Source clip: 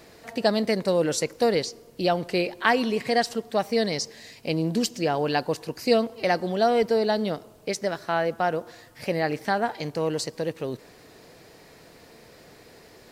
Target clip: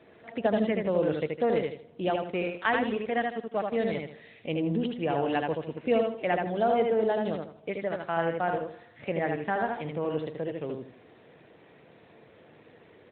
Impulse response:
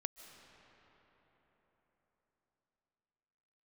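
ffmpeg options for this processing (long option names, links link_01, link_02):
-filter_complex "[0:a]asplit=3[link_01][link_02][link_03];[link_01]afade=type=out:start_time=2.06:duration=0.02[link_04];[link_02]aeval=exprs='sgn(val(0))*max(abs(val(0))-0.0141,0)':channel_layout=same,afade=type=in:start_time=2.06:duration=0.02,afade=type=out:start_time=3.76:duration=0.02[link_05];[link_03]afade=type=in:start_time=3.76:duration=0.02[link_06];[link_04][link_05][link_06]amix=inputs=3:normalize=0,aecho=1:1:78|156|234|312:0.668|0.207|0.0642|0.0199,volume=-4.5dB" -ar 8000 -c:a libopencore_amrnb -b:a 12200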